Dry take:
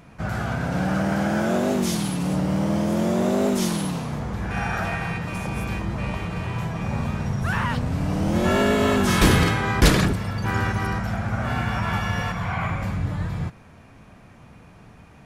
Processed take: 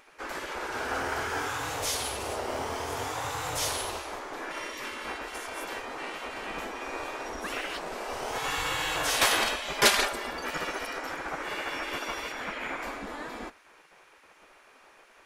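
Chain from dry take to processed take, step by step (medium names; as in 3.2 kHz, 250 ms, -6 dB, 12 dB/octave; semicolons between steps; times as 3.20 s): spectral gate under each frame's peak -15 dB weak; 9.61–10.31 s: comb 5 ms, depth 56%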